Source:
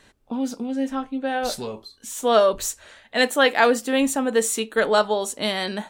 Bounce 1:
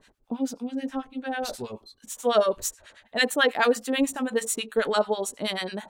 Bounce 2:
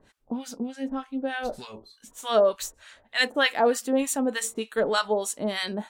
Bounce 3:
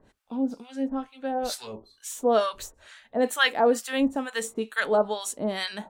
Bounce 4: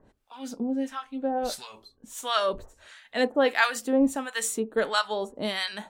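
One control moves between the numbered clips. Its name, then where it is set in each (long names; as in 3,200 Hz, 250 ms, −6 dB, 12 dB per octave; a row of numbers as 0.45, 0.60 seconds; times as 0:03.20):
two-band tremolo in antiphase, speed: 9.2, 3.3, 2.2, 1.5 Hertz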